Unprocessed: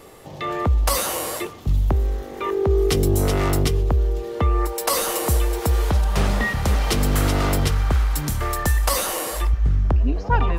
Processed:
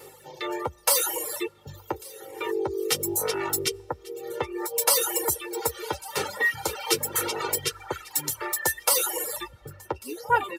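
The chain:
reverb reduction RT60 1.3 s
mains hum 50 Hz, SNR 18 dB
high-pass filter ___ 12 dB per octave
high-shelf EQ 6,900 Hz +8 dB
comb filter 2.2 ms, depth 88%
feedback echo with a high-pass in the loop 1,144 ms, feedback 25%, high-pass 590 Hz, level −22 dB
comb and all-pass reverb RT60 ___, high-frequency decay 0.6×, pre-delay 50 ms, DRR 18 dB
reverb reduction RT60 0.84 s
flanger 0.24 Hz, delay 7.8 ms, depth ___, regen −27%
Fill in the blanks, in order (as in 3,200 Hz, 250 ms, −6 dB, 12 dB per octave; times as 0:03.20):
280 Hz, 4.1 s, 1.3 ms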